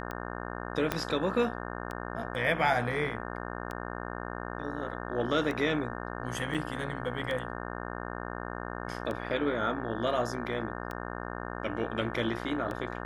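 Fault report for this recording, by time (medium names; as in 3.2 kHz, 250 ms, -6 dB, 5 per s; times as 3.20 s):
buzz 60 Hz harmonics 30 -38 dBFS
tick 33 1/3 rpm -23 dBFS
0.92 s: pop -13 dBFS
6.54–6.55 s: dropout 5.5 ms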